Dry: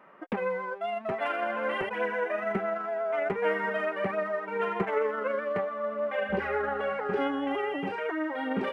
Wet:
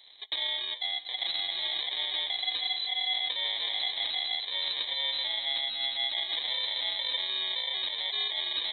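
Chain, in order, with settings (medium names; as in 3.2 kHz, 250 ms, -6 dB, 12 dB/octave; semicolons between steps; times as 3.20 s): 0.77–1.67 s: high-pass 460 Hz 12 dB/octave; peak limiter -23.5 dBFS, peak gain reduction 7.5 dB; sample-rate reducer 1.3 kHz, jitter 0%; on a send at -21 dB: reverberation RT60 2.3 s, pre-delay 4 ms; on the sum: frequency inversion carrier 4 kHz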